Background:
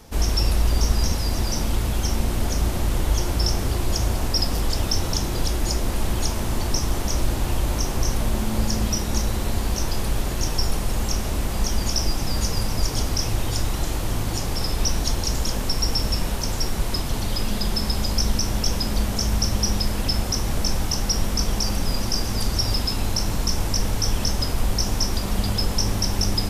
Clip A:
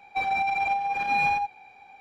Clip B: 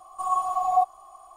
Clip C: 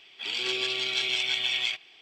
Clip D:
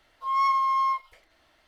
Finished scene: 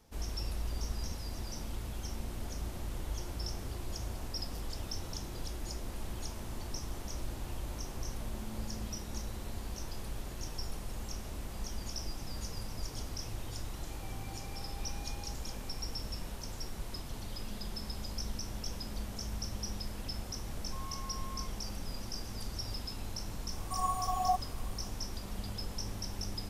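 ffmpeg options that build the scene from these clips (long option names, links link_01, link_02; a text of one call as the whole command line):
ffmpeg -i bed.wav -i cue0.wav -i cue1.wav -i cue2.wav -i cue3.wav -filter_complex "[0:a]volume=-17dB[link_01];[1:a]acompressor=threshold=-45dB:ratio=6:attack=3.2:release=140:knee=1:detection=peak[link_02];[4:a]acompressor=threshold=-35dB:ratio=6:attack=3.2:release=140:knee=1:detection=peak[link_03];[2:a]aemphasis=mode=production:type=50fm[link_04];[link_02]atrim=end=2,asetpts=PTS-STARTPTS,volume=-9dB,afade=type=in:duration=0.004:curve=hsin,afade=type=out:start_time=1.996:duration=0.004:curve=hsin,adelay=13880[link_05];[link_03]atrim=end=1.67,asetpts=PTS-STARTPTS,volume=-12dB,afade=type=in:duration=0.004:curve=hsin,afade=type=out:start_time=1.666:duration=0.004:curve=hsin,adelay=20500[link_06];[link_04]atrim=end=1.36,asetpts=PTS-STARTPTS,volume=-9dB,afade=type=in:duration=0.004:curve=hsin,afade=type=out:start_time=1.356:duration=0.004:curve=hsin,adelay=23520[link_07];[link_01][link_05][link_06][link_07]amix=inputs=4:normalize=0" out.wav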